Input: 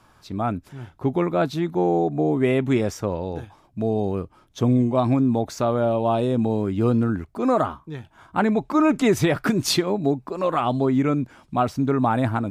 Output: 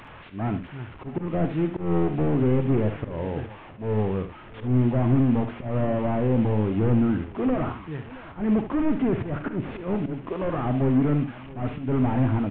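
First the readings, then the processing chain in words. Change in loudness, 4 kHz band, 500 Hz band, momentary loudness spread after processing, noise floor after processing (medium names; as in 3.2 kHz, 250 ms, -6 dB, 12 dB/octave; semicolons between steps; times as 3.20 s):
-3.0 dB, under -15 dB, -5.5 dB, 12 LU, -44 dBFS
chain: one-bit delta coder 16 kbps, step -38.5 dBFS; slow attack 155 ms; multi-tap echo 47/74/669 ms -12.5/-11/-19 dB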